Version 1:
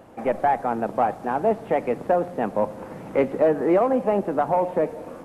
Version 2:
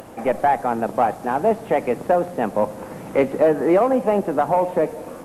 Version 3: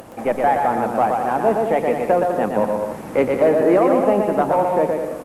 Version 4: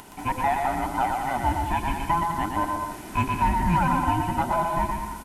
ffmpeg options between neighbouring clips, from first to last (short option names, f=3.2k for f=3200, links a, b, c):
-af "aemphasis=mode=production:type=cd,acompressor=mode=upward:threshold=-37dB:ratio=2.5,volume=3dB"
-af "aecho=1:1:120|204|262.8|304|332.8:0.631|0.398|0.251|0.158|0.1"
-filter_complex "[0:a]afftfilt=real='real(if(between(b,1,1008),(2*floor((b-1)/24)+1)*24-b,b),0)':imag='imag(if(between(b,1,1008),(2*floor((b-1)/24)+1)*24-b,b),0)*if(between(b,1,1008),-1,1)':win_size=2048:overlap=0.75,acrossover=split=2400[a][b];[b]aeval=exprs='0.0668*sin(PI/2*2*val(0)/0.0668)':c=same[c];[a][c]amix=inputs=2:normalize=0,volume=-7dB"